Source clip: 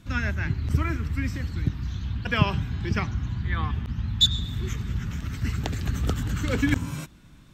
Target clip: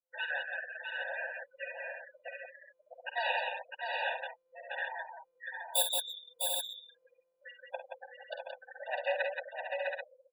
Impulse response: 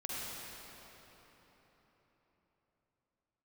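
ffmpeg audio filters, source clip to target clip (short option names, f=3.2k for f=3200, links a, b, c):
-filter_complex "[0:a]adynamicsmooth=sensitivity=6:basefreq=2.6k,bandreject=f=60:t=h:w=6,bandreject=f=120:t=h:w=6,bandreject=f=180:t=h:w=6,bandreject=f=240:t=h:w=6,bandreject=f=300:t=h:w=6,bandreject=f=360:t=h:w=6,bandreject=f=420:t=h:w=6,bandreject=f=480:t=h:w=6,bandreject=f=540:t=h:w=6,bandreject=f=600:t=h:w=6,atempo=0.73,aemphasis=mode=production:type=50fm,aeval=exprs='abs(val(0))':c=same,asplit=2[a][b];[b]asetrate=58866,aresample=44100,atempo=0.749154,volume=-13dB[c];[a][c]amix=inputs=2:normalize=0,bandreject=f=5.4k:w=5.9,afftfilt=real='re*gte(hypot(re,im),0.0355)':imag='im*gte(hypot(re,im),0.0355)':win_size=1024:overlap=0.75,equalizer=f=6.2k:w=2.5:g=-15,aecho=1:1:50|62|175|654|724|785:0.335|0.178|0.562|0.562|0.447|0.376,afftfilt=real='re*eq(mod(floor(b*sr/1024/490),2),1)':imag='im*eq(mod(floor(b*sr/1024/490),2),1)':win_size=1024:overlap=0.75"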